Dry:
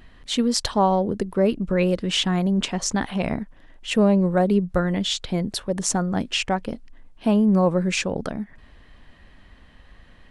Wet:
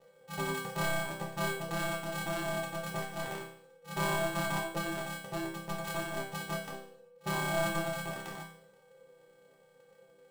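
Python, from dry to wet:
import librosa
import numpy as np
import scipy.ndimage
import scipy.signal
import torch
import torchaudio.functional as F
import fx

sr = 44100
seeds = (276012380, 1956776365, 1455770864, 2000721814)

y = np.r_[np.sort(x[:len(x) // 128 * 128].reshape(-1, 128), axis=1).ravel(), x[len(x) // 128 * 128:]]
y = y * np.sin(2.0 * np.pi * 500.0 * np.arange(len(y)) / sr)
y = fx.resonator_bank(y, sr, root=48, chord='major', decay_s=0.61)
y = y * librosa.db_to_amplitude(8.5)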